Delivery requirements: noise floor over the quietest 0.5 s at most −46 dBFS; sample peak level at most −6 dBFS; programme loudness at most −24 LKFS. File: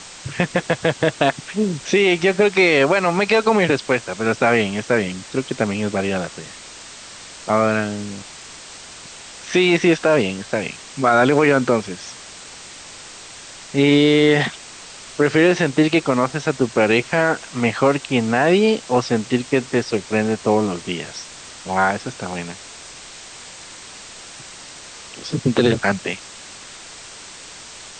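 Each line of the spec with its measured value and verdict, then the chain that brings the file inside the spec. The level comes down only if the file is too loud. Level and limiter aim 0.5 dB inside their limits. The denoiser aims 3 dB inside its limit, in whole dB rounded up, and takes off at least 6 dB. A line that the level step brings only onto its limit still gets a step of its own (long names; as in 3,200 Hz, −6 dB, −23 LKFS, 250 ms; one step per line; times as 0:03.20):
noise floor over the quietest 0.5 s −39 dBFS: out of spec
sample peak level −4.5 dBFS: out of spec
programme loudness −18.5 LKFS: out of spec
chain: broadband denoise 6 dB, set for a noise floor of −39 dBFS
level −6 dB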